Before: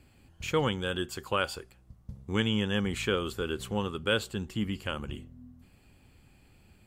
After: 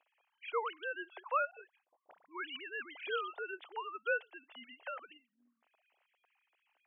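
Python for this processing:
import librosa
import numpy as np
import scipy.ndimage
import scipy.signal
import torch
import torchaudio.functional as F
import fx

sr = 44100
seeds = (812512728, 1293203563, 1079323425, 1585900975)

y = fx.sine_speech(x, sr)
y = fx.ladder_highpass(y, sr, hz=560.0, resonance_pct=40)
y = fx.dispersion(y, sr, late='highs', ms=41.0, hz=1200.0, at=(1.51, 3.38))
y = y * 10.0 ** (1.0 / 20.0)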